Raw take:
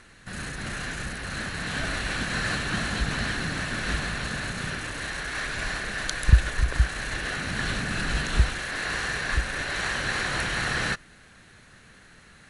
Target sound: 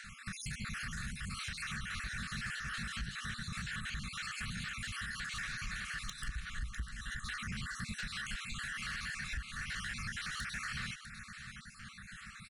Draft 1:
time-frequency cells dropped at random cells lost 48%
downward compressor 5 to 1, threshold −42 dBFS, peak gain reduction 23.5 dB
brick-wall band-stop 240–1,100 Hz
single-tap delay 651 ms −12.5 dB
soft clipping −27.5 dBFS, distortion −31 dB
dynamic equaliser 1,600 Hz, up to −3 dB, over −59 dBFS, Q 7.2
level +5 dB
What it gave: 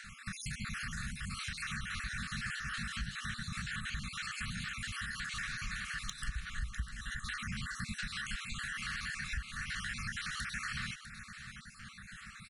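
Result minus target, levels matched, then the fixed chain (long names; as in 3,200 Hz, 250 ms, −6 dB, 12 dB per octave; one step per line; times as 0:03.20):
soft clipping: distortion −13 dB
time-frequency cells dropped at random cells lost 48%
downward compressor 5 to 1, threshold −42 dBFS, peak gain reduction 23.5 dB
brick-wall band-stop 240–1,100 Hz
single-tap delay 651 ms −12.5 dB
soft clipping −36 dBFS, distortion −18 dB
dynamic equaliser 1,600 Hz, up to −3 dB, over −59 dBFS, Q 7.2
level +5 dB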